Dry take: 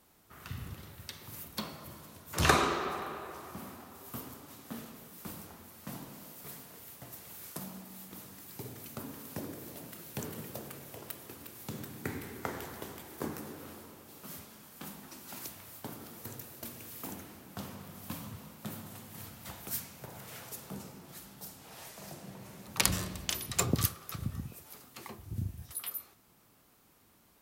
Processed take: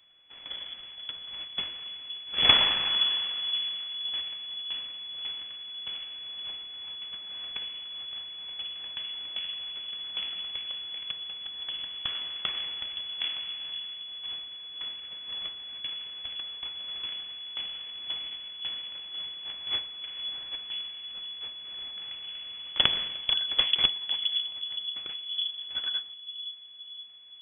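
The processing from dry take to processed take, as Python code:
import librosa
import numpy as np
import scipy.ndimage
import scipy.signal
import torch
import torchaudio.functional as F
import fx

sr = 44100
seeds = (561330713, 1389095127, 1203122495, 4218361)

y = fx.low_shelf(x, sr, hz=340.0, db=-5.5)
y = np.abs(y)
y = fx.echo_bbd(y, sr, ms=519, stages=2048, feedback_pct=51, wet_db=-9.0)
y = fx.freq_invert(y, sr, carrier_hz=3400)
y = y * librosa.db_to_amplitude(5.0)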